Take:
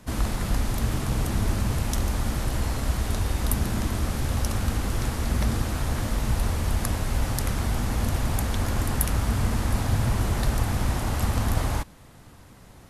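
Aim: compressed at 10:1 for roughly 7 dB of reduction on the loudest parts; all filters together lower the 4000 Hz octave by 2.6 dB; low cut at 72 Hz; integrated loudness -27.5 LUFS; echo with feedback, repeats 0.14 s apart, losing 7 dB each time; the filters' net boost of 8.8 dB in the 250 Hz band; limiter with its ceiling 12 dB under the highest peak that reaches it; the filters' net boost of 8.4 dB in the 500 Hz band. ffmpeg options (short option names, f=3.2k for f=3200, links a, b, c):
-af "highpass=72,equalizer=f=250:t=o:g=9,equalizer=f=500:t=o:g=8,equalizer=f=4k:t=o:g=-3.5,acompressor=threshold=-25dB:ratio=10,alimiter=limit=-22dB:level=0:latency=1,aecho=1:1:140|280|420|560|700:0.447|0.201|0.0905|0.0407|0.0183,volume=3dB"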